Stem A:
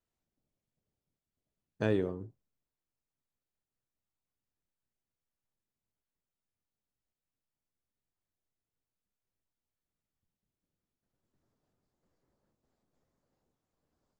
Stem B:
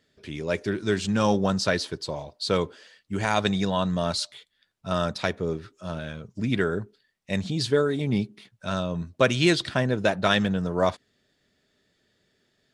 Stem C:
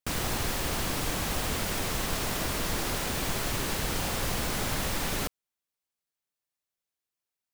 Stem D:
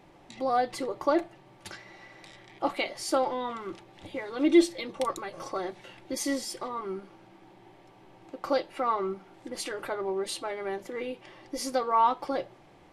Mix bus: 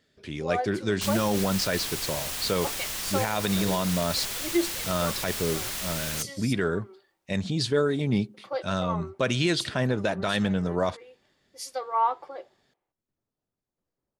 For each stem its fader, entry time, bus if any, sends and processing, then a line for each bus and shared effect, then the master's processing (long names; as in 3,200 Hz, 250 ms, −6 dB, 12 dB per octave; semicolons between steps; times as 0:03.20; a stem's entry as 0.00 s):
−7.0 dB, 1.75 s, no send, no processing
0.0 dB, 0.00 s, no send, no processing
−5.0 dB, 0.95 s, no send, tilt shelving filter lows −7.5 dB, about 1,400 Hz
−8.5 dB, 0.00 s, no send, Butterworth high-pass 350 Hz 36 dB per octave; multiband upward and downward expander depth 100%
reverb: not used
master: brickwall limiter −14 dBFS, peak gain reduction 8 dB